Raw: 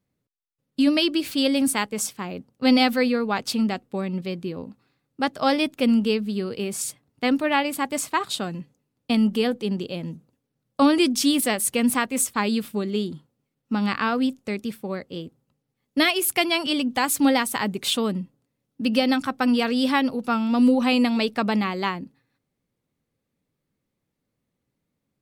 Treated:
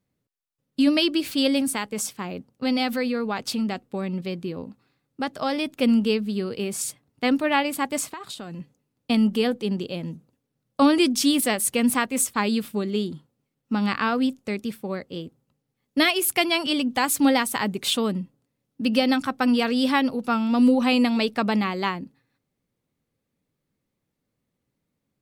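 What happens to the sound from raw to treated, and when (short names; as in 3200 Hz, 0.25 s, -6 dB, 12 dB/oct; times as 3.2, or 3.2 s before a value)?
1.6–5.79 compressor 2:1, threshold -24 dBFS
8.09–8.6 compressor 10:1, threshold -32 dBFS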